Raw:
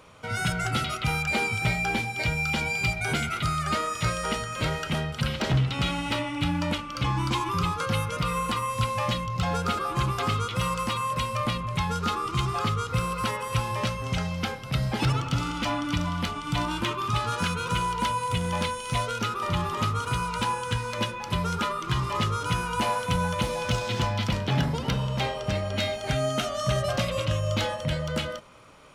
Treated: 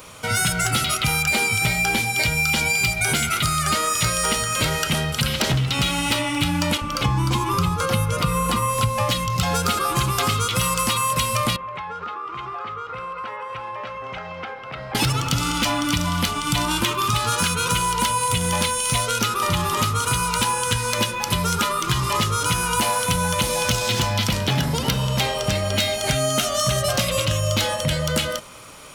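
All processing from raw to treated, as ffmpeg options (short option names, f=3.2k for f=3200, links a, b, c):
-filter_complex "[0:a]asettb=1/sr,asplit=3[a][b][c];[a]atrim=end=6.774[d];[b]atrim=start=6.77:end=9.1,asetpts=PTS-STARTPTS,afade=t=in:d=0.004:c=qsin,afade=t=out:st=2.326:d=0.004:c=qsin,tiltshelf=f=1.2k:g=5.5,acrossover=split=290[e][f];[e]adelay=40[g];[g][f]amix=inputs=2:normalize=0,atrim=end_sample=102753[h];[c]atrim=start=9.096[i];[d][h]acrossfade=d=0.004:c1=hsin:c2=qsin[j];[j][i]acrossfade=d=0.004:c1=qsin:c2=hsin,asettb=1/sr,asplit=3[k][l][m];[k]atrim=end=11.564[n];[l]atrim=start=11.56:end=14.95,asetpts=PTS-STARTPTS,afade=t=in:d=0.004:c=qsin,afade=t=out:st=3.386:d=0.004:c=qsin,lowpass=4.3k,acrossover=split=390 2200:gain=0.126 1 0.0891[o][p][q];[o][p][q]amix=inputs=3:normalize=0,acompressor=threshold=-37dB:ratio=5:attack=3.2:release=140:knee=1:detection=peak[r];[m]atrim=start=14.946[s];[n][r]acrossfade=d=0.004:c1=hsin:c2=qsin[t];[t][s]acrossfade=d=0.004:c1=qsin:c2=hsin,aemphasis=mode=production:type=75kf,acompressor=threshold=-25dB:ratio=6,volume=7.5dB"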